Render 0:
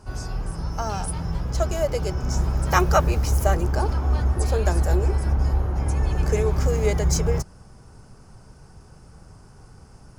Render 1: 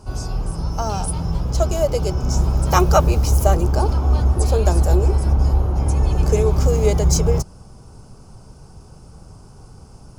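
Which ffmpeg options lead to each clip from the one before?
ffmpeg -i in.wav -af "equalizer=frequency=1800:width_type=o:width=0.66:gain=-10.5,volume=5dB" out.wav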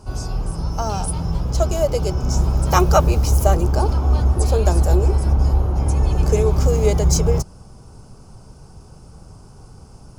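ffmpeg -i in.wav -af anull out.wav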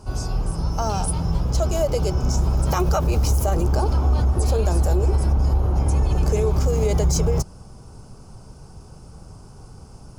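ffmpeg -i in.wav -af "alimiter=limit=-11.5dB:level=0:latency=1:release=44" out.wav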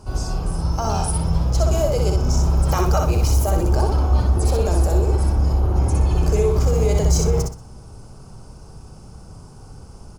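ffmpeg -i in.wav -af "aecho=1:1:62|124|186|248:0.668|0.187|0.0524|0.0147" out.wav

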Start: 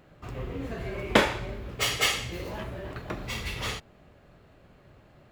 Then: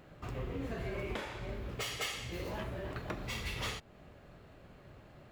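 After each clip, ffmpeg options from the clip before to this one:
ffmpeg -i in.wav -af "acompressor=threshold=-42dB:ratio=1.5,alimiter=level_in=2.5dB:limit=-24dB:level=0:latency=1:release=359,volume=-2.5dB" out.wav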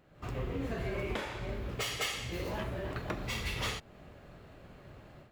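ffmpeg -i in.wav -af "dynaudnorm=framelen=130:gausssize=3:maxgain=11dB,volume=-8dB" out.wav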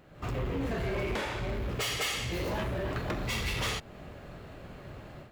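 ffmpeg -i in.wav -af "asoftclip=type=tanh:threshold=-34dB,volume=7dB" out.wav

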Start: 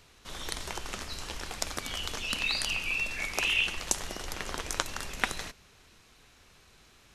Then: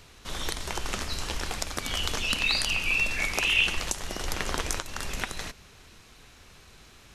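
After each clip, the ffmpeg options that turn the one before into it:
ffmpeg -i in.wav -af "lowshelf=frequency=190:gain=3,alimiter=limit=-14.5dB:level=0:latency=1:release=343,volume=5.5dB" out.wav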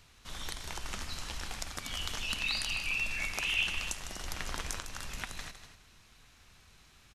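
ffmpeg -i in.wav -filter_complex "[0:a]equalizer=frequency=420:width=1.1:gain=-6.5,asplit=2[link_01][link_02];[link_02]aecho=0:1:154.5|242:0.282|0.251[link_03];[link_01][link_03]amix=inputs=2:normalize=0,volume=-7.5dB" out.wav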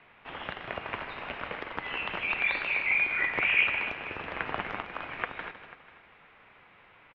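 ffmpeg -i in.wav -af "highpass=frequency=340:width_type=q:width=0.5412,highpass=frequency=340:width_type=q:width=1.307,lowpass=frequency=2900:width_type=q:width=0.5176,lowpass=frequency=2900:width_type=q:width=0.7071,lowpass=frequency=2900:width_type=q:width=1.932,afreqshift=-270,aecho=1:1:491:0.119,volume=8.5dB" out.wav

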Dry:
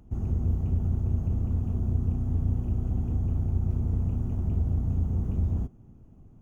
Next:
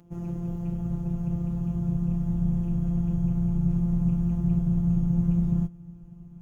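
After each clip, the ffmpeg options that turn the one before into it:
ffmpeg -i in.wav -af "afftfilt=real='hypot(re,im)*cos(PI*b)':imag='0':win_size=1024:overlap=0.75,highpass=frequency=88:poles=1,asubboost=boost=7:cutoff=150,volume=6.5dB" out.wav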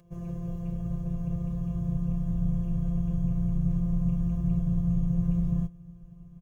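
ffmpeg -i in.wav -af "aecho=1:1:1.8:0.98,volume=-4.5dB" out.wav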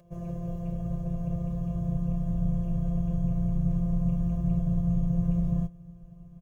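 ffmpeg -i in.wav -af "equalizer=frequency=610:width=4.4:gain=13.5" out.wav

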